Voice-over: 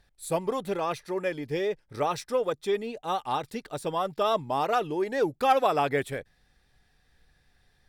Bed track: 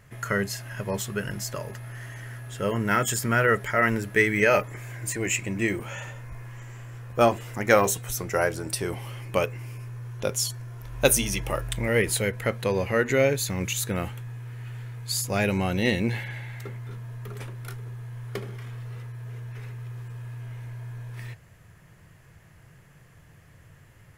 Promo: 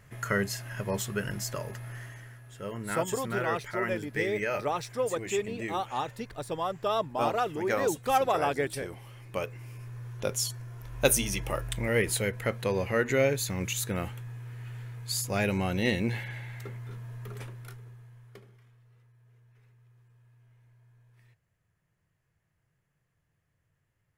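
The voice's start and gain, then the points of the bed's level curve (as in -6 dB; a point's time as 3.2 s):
2.65 s, -3.0 dB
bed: 1.95 s -2 dB
2.39 s -11 dB
9.12 s -11 dB
9.99 s -3.5 dB
17.4 s -3.5 dB
18.78 s -23.5 dB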